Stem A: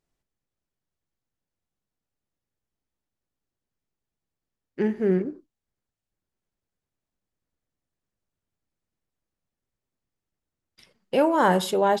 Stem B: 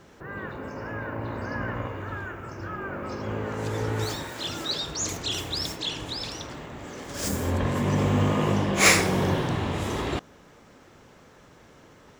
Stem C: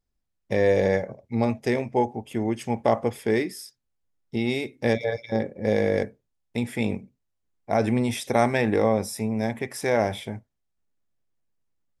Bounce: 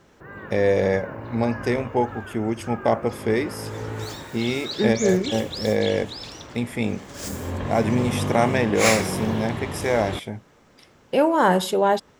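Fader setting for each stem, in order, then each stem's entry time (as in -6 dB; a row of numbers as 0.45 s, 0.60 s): +2.0 dB, -3.0 dB, +1.0 dB; 0.00 s, 0.00 s, 0.00 s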